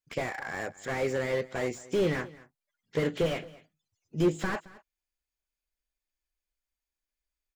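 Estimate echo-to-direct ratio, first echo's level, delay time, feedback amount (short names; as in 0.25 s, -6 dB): -20.5 dB, -20.5 dB, 0.22 s, no steady repeat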